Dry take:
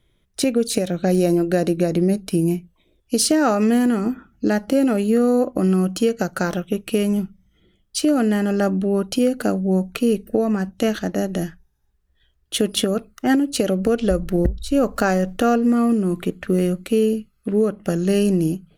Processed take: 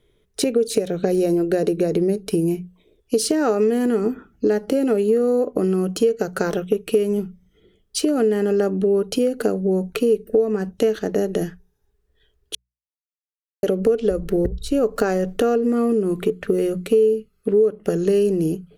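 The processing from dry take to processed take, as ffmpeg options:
-filter_complex "[0:a]asplit=3[s0][s1][s2];[s0]atrim=end=12.55,asetpts=PTS-STARTPTS,afade=t=out:st=12.546:d=0.004:c=hsin[s3];[s1]atrim=start=12.55:end=13.63,asetpts=PTS-STARTPTS,volume=0[s4];[s2]atrim=start=13.63,asetpts=PTS-STARTPTS,afade=t=in:d=0.004:c=hsin[s5];[s3][s4][s5]concat=n=3:v=0:a=1,equalizer=f=430:t=o:w=0.34:g=15,bandreject=f=60:t=h:w=6,bandreject=f=120:t=h:w=6,bandreject=f=180:t=h:w=6,acompressor=threshold=0.141:ratio=3"

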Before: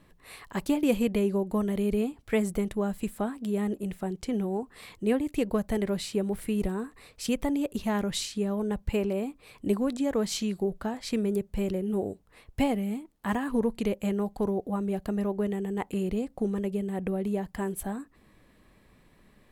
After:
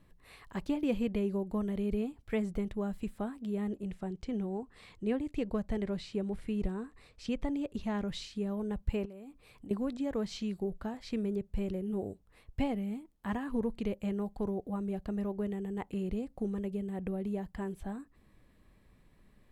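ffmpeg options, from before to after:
-filter_complex "[0:a]asettb=1/sr,asplit=3[s0][s1][s2];[s0]atrim=end=3.684[s3];[s1]atrim=start=3.68:end=8.08,asetpts=PTS-STARTPTS,afade=t=in:d=0.004:c=qsin,afade=t=out:st=4.396:d=0.004:c=qsin,lowpass=7800[s4];[s2]atrim=start=8.076[s5];[s3][s4]acrossfade=d=0.004:c1=hsin:c2=qsin[s6];[s6][s5]acrossfade=d=0.004:c1=qsin:c2=hsin,asettb=1/sr,asplit=3[s7][s8][s9];[s7]atrim=end=9.054[s10];[s8]atrim=start=9.05:end=9.71,asetpts=PTS-STARTPTS,afade=t=in:d=0.004:c=qsin,afade=t=out:st=0.656:d=0.004:c=qsin,acompressor=threshold=0.0141:ratio=16:attack=3.2:release=140:knee=1:detection=peak[s11];[s9]atrim=start=9.706[s12];[s10][s11]acrossfade=d=0.004:c1=hsin:c2=qsin[s13];[s13][s12]acrossfade=d=0.004:c1=qsin:c2=hsin,acrossover=split=5700[s14][s15];[s15]acompressor=threshold=0.00126:ratio=4:attack=1:release=60[s16];[s14][s16]amix=inputs=2:normalize=0,lowshelf=f=140:g=8.5,volume=0.398"

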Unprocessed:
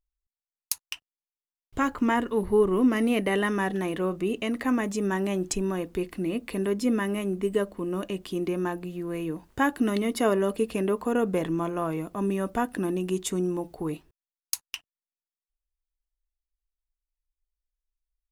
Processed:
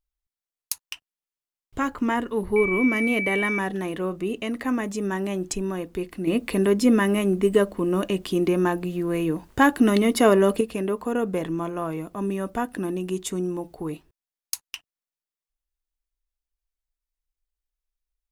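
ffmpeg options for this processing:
-filter_complex "[0:a]asettb=1/sr,asplit=3[s0][s1][s2];[s0]atrim=end=2.564[s3];[s1]atrim=start=2.56:end=3.59,asetpts=PTS-STARTPTS,afade=t=in:d=0.004:c=qsin,afade=t=out:st=1.026:d=0.004:c=qsin,aeval=exprs='val(0)+0.0562*sin(2*PI*2300*n/s)':c=same[s4];[s2]atrim=start=3.586[s5];[s3][s4]acrossfade=d=0.004:c1=hsin:c2=qsin[s6];[s6][s5]acrossfade=d=0.004:c1=qsin:c2=hsin,asettb=1/sr,asplit=3[s7][s8][s9];[s7]atrim=end=6.274[s10];[s8]atrim=start=6.27:end=10.61,asetpts=PTS-STARTPTS,afade=t=in:d=0.004:c=qsin,afade=t=out:st=4.336:d=0.004:c=qsin,acontrast=78[s11];[s9]atrim=start=10.606[s12];[s10][s11]acrossfade=d=0.004:c1=hsin:c2=qsin[s13];[s13][s12]acrossfade=d=0.004:c1=qsin:c2=hsin"

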